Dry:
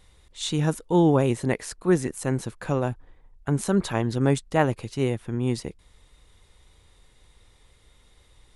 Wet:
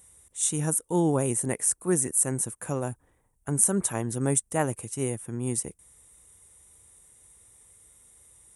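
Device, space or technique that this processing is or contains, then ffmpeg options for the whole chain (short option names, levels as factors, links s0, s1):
budget condenser microphone: -af "highpass=65,equalizer=f=5800:t=o:w=0.26:g=6,highshelf=f=6500:t=q:w=3:g=14,volume=0.562"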